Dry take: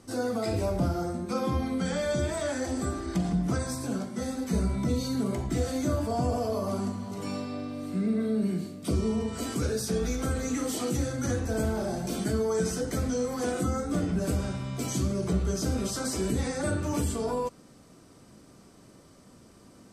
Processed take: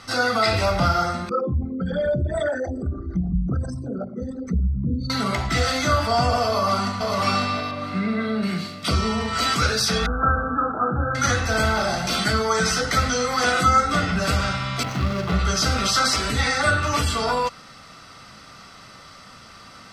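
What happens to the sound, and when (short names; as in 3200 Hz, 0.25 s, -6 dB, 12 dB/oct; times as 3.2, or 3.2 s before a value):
1.29–5.1 formant sharpening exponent 3
6.45–7.05 echo throw 0.55 s, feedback 25%, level -3 dB
7.71–8.43 high shelf 3900 Hz -11 dB
10.06–11.15 brick-wall FIR low-pass 1700 Hz
14.83–15.39 median filter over 25 samples
16.16–17.17 notch comb 180 Hz
whole clip: band shelf 2200 Hz +15 dB 2.9 oct; comb 1.5 ms, depth 46%; gain +3.5 dB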